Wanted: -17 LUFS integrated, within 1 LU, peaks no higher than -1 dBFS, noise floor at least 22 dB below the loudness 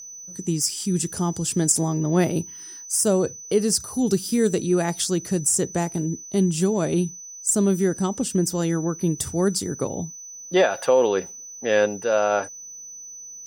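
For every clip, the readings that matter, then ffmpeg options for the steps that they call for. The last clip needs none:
steady tone 6000 Hz; tone level -37 dBFS; loudness -22.5 LUFS; peak -5.0 dBFS; loudness target -17.0 LUFS
-> -af "bandreject=f=6k:w=30"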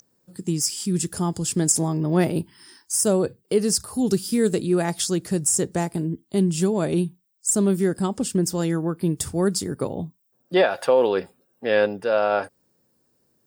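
steady tone none; loudness -23.0 LUFS; peak -5.5 dBFS; loudness target -17.0 LUFS
-> -af "volume=6dB,alimiter=limit=-1dB:level=0:latency=1"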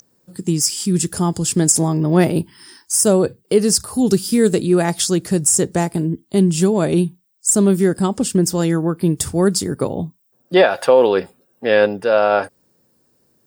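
loudness -17.0 LUFS; peak -1.0 dBFS; noise floor -62 dBFS

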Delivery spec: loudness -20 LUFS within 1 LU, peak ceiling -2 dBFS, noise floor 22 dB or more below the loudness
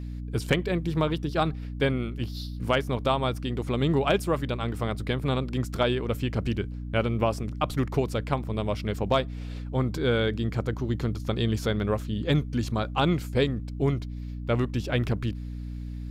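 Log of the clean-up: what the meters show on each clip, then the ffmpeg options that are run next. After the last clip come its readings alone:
hum 60 Hz; harmonics up to 300 Hz; hum level -33 dBFS; loudness -28.0 LUFS; peak -11.5 dBFS; loudness target -20.0 LUFS
-> -af "bandreject=f=60:t=h:w=4,bandreject=f=120:t=h:w=4,bandreject=f=180:t=h:w=4,bandreject=f=240:t=h:w=4,bandreject=f=300:t=h:w=4"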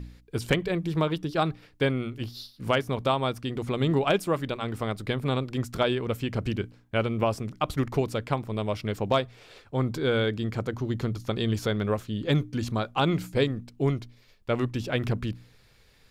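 hum none; loudness -28.5 LUFS; peak -11.5 dBFS; loudness target -20.0 LUFS
-> -af "volume=8.5dB"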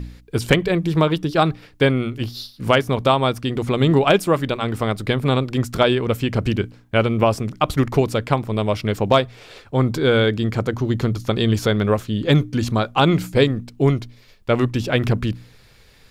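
loudness -20.0 LUFS; peak -3.0 dBFS; noise floor -50 dBFS

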